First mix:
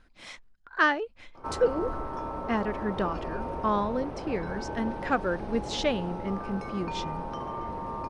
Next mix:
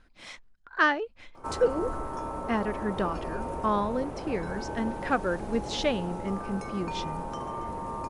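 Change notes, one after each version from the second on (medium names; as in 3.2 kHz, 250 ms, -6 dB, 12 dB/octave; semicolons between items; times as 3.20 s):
background: remove Savitzky-Golay filter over 15 samples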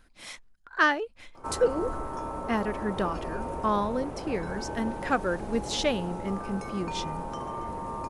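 speech: remove distance through air 78 m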